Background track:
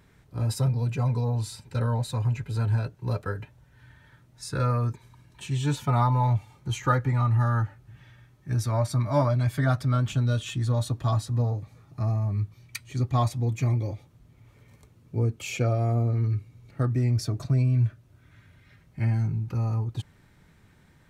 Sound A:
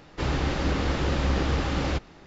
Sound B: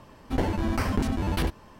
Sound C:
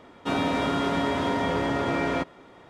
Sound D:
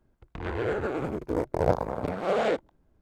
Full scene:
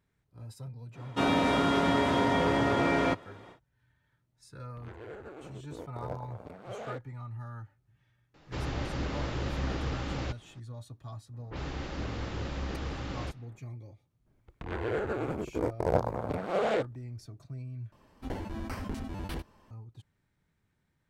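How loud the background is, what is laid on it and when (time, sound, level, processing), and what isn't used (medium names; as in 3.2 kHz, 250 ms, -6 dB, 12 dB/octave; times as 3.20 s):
background track -18.5 dB
0.91 s: add C -0.5 dB, fades 0.10 s
4.42 s: add D -16 dB
8.34 s: add A -8.5 dB
11.33 s: add A -11 dB + level-controlled noise filter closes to 740 Hz, open at -21.5 dBFS
14.26 s: add D -3 dB
17.92 s: replace with B -11 dB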